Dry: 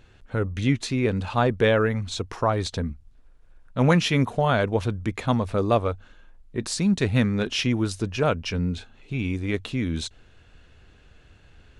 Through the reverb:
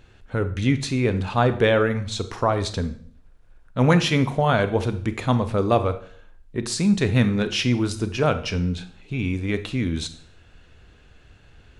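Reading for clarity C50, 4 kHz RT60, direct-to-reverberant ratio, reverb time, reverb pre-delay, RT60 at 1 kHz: 13.0 dB, 0.50 s, 10.5 dB, 0.55 s, 27 ms, 0.50 s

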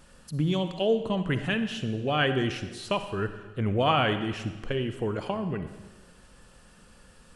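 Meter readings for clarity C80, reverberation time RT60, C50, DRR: 11.5 dB, 1.3 s, 9.5 dB, 9.5 dB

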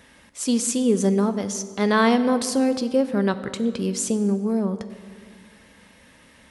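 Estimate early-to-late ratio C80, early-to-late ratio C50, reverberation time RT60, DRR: 13.5 dB, 12.5 dB, 1.8 s, 11.0 dB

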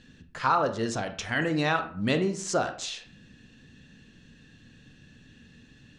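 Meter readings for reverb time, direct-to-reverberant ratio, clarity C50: 0.55 s, 7.5 dB, 11.0 dB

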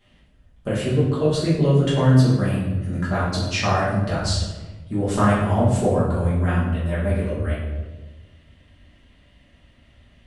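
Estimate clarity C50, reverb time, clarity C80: 1.5 dB, 1.3 s, 4.5 dB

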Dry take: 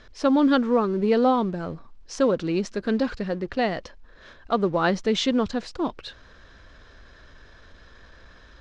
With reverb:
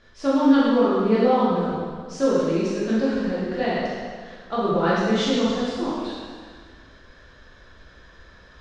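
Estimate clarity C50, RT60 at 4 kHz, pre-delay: -3.0 dB, 1.7 s, 7 ms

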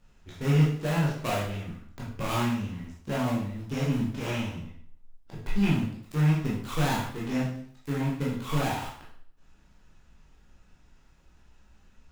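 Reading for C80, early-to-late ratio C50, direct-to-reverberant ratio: 7.0 dB, 3.0 dB, -6.5 dB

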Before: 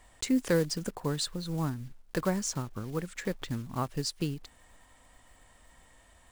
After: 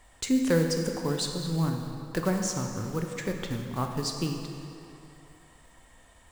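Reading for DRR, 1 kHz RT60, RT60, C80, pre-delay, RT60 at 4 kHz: 3.0 dB, 2.8 s, 2.8 s, 5.0 dB, 11 ms, 2.1 s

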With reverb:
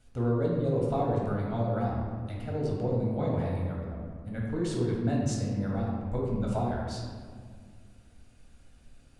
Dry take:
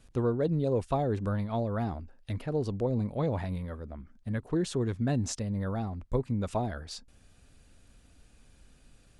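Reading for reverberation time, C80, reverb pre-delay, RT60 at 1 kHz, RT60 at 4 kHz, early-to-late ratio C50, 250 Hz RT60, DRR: 1.9 s, 2.5 dB, 4 ms, 1.8 s, 1.0 s, 0.0 dB, 2.6 s, -3.5 dB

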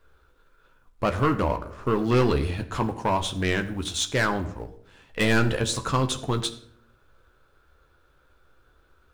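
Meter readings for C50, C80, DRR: 13.5 dB, 16.0 dB, 6.0 dB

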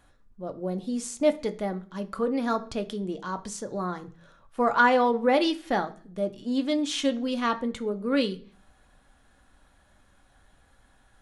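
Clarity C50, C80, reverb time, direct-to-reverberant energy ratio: 17.5 dB, 21.5 dB, 0.45 s, 6.5 dB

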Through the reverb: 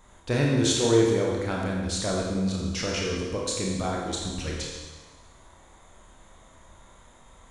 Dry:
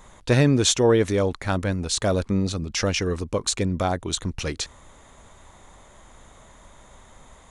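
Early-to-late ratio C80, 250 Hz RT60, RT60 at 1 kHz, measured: 2.5 dB, 1.3 s, 1.3 s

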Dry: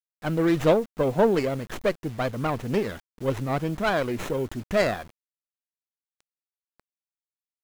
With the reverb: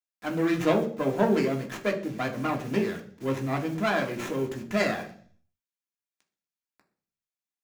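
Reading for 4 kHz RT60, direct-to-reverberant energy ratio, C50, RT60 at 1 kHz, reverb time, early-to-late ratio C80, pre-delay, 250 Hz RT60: 0.70 s, 1.5 dB, 12.0 dB, 0.50 s, 0.50 s, 15.5 dB, 3 ms, 0.70 s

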